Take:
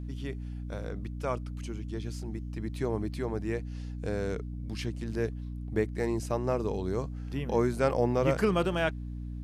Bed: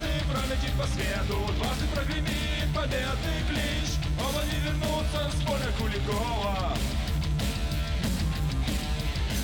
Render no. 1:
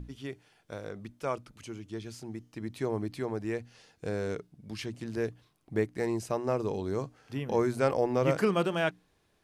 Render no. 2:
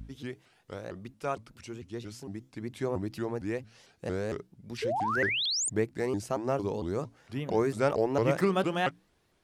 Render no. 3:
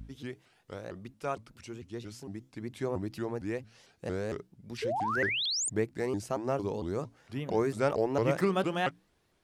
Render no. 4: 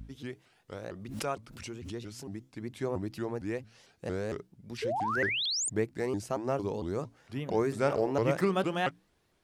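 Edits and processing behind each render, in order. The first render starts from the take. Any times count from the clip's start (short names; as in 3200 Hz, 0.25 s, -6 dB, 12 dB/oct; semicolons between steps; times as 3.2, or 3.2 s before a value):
notches 60/120/180/240/300 Hz
4.82–5.7 painted sound rise 450–8400 Hz -30 dBFS; shaped vibrato saw up 4.4 Hz, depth 250 cents
gain -1.5 dB
0.77–2.5 backwards sustainer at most 57 dB/s; 7.67–8.12 flutter echo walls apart 8.6 m, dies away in 0.26 s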